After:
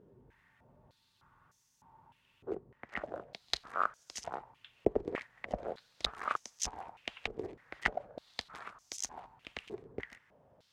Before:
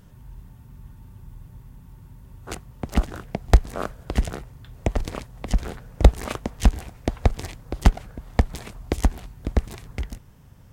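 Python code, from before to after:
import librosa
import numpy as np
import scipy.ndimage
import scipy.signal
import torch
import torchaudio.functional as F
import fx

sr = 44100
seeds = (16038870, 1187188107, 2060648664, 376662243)

y = fx.high_shelf(x, sr, hz=2200.0, db=-11.0, at=(2.5, 3.03), fade=0.02)
y = fx.filter_held_bandpass(y, sr, hz=3.3, low_hz=410.0, high_hz=6000.0)
y = F.gain(torch.from_numpy(y), 5.0).numpy()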